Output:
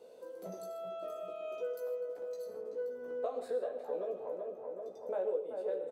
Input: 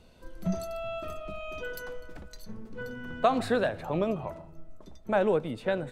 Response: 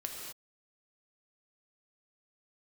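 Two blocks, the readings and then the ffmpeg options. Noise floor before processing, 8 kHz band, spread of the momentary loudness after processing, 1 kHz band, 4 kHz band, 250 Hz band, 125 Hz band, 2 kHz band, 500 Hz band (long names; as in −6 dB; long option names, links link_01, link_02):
−52 dBFS, below −10 dB, 8 LU, −14.0 dB, below −15 dB, −19.5 dB, below −20 dB, −20.0 dB, −5.0 dB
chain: -filter_complex "[0:a]highpass=frequency=480:width_type=q:width=6,equalizer=frequency=2300:width_type=o:width=2.6:gain=-9.5,asplit=2[link_01][link_02];[link_02]adelay=381,lowpass=frequency=1900:poles=1,volume=-8.5dB,asplit=2[link_03][link_04];[link_04]adelay=381,lowpass=frequency=1900:poles=1,volume=0.48,asplit=2[link_05][link_06];[link_06]adelay=381,lowpass=frequency=1900:poles=1,volume=0.48,asplit=2[link_07][link_08];[link_08]adelay=381,lowpass=frequency=1900:poles=1,volume=0.48,asplit=2[link_09][link_10];[link_10]adelay=381,lowpass=frequency=1900:poles=1,volume=0.48[link_11];[link_01][link_03][link_05][link_07][link_09][link_11]amix=inputs=6:normalize=0,acompressor=threshold=-43dB:ratio=2.5,asplit=2[link_12][link_13];[1:a]atrim=start_sample=2205,afade=type=out:start_time=0.2:duration=0.01,atrim=end_sample=9261,adelay=16[link_14];[link_13][link_14]afir=irnorm=-1:irlink=0,volume=-1.5dB[link_15];[link_12][link_15]amix=inputs=2:normalize=0,volume=-1.5dB"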